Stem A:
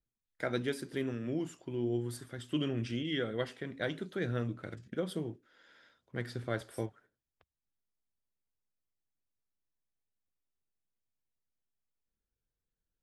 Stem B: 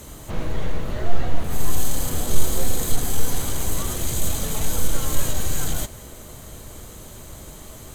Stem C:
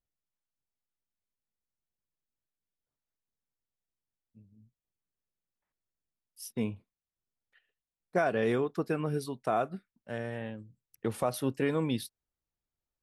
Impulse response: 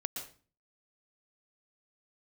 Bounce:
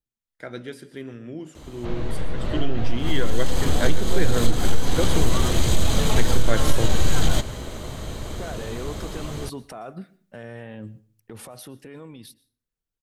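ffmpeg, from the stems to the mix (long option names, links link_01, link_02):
-filter_complex "[0:a]volume=-4dB,asplit=2[link_01][link_02];[link_02]volume=-10.5dB[link_03];[1:a]aemphasis=mode=reproduction:type=75kf,acompressor=threshold=-17dB:ratio=5,equalizer=frequency=4000:width=1:gain=6.5,adelay=1550,volume=-5.5dB,asplit=2[link_04][link_05];[link_05]volume=-16dB[link_06];[2:a]agate=range=-16dB:threshold=-56dB:ratio=16:detection=peak,acompressor=threshold=-36dB:ratio=6,alimiter=level_in=16dB:limit=-24dB:level=0:latency=1:release=48,volume=-16dB,adelay=250,volume=-0.5dB,asplit=2[link_07][link_08];[link_08]volume=-15.5dB[link_09];[3:a]atrim=start_sample=2205[link_10];[link_03][link_06][link_09]amix=inputs=3:normalize=0[link_11];[link_11][link_10]afir=irnorm=-1:irlink=0[link_12];[link_01][link_04][link_07][link_12]amix=inputs=4:normalize=0,dynaudnorm=framelen=650:gausssize=9:maxgain=13.5dB"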